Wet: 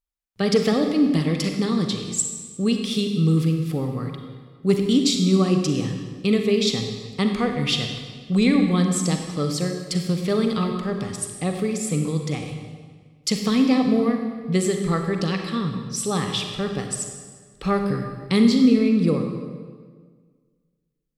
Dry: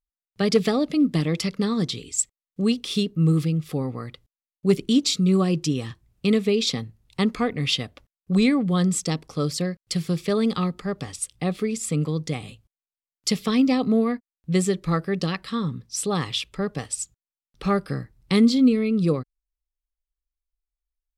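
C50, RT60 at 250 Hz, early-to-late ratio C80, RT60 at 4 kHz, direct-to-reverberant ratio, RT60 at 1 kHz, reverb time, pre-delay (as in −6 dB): 5.0 dB, 1.8 s, 6.5 dB, 1.3 s, 4.0 dB, 1.6 s, 1.6 s, 35 ms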